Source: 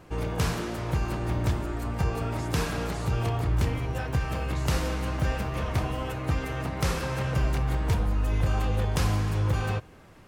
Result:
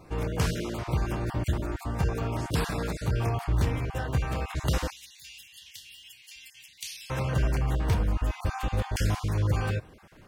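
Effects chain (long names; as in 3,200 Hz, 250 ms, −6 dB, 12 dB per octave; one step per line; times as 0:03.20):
time-frequency cells dropped at random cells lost 22%
0:04.90–0:07.10: inverse Chebyshev high-pass filter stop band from 1,400 Hz, stop band 40 dB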